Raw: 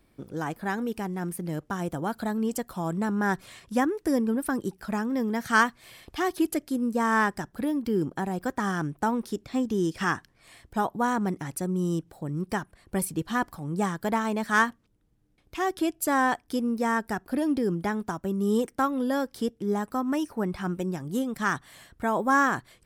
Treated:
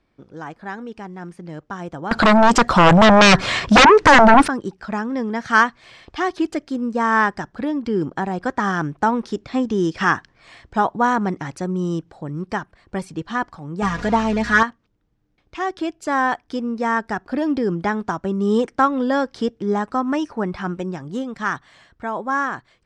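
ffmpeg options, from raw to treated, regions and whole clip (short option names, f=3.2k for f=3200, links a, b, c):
-filter_complex "[0:a]asettb=1/sr,asplit=3[a][b][c];[a]atrim=end=2.114[d];[b]atrim=start=2.11:end=4.48,asetpts=PTS-STARTPTS,afade=t=in:d=0.004:c=qsin,afade=t=out:st=2.366:d=0.004:c=qsin,highshelf=f=9.9k:g=-6,aeval=exprs='0.282*sin(PI/2*7.94*val(0)/0.282)':c=same[e];[c]atrim=start=4.476[f];[d][e]acrossfade=d=0.004:c1=hsin:c2=qsin[g];[g][f]acrossfade=d=0.004:c1=qsin:c2=hsin,asettb=1/sr,asplit=3[h][i][j];[h]atrim=end=13.824[k];[i]atrim=start=13.82:end=14.63,asetpts=PTS-STARTPTS,afade=t=in:d=0.004:c=qsin,afade=t=out:st=0.806:d=0.004:c=qsin,aeval=exprs='val(0)+0.5*0.0299*sgn(val(0))':c=same,aecho=1:1:4.2:0.94,atrim=end_sample=35721,aeval=exprs='val(0)+0.0178*(sin(2*PI*60*n/s)+sin(2*PI*2*60*n/s)/2+sin(2*PI*3*60*n/s)/3+sin(2*PI*4*60*n/s)/4+sin(2*PI*5*60*n/s)/5)':c=same[l];[j]atrim=start=14.626[m];[k][l]acrossfade=d=0.004:c1=hsin:c2=qsin[n];[n][m]acrossfade=d=0.004:c1=qsin:c2=hsin,dynaudnorm=f=380:g=13:m=11.5dB,lowpass=f=6.5k:w=0.5412,lowpass=f=6.5k:w=1.3066,equalizer=f=1.2k:w=0.53:g=4.5,volume=-4.5dB"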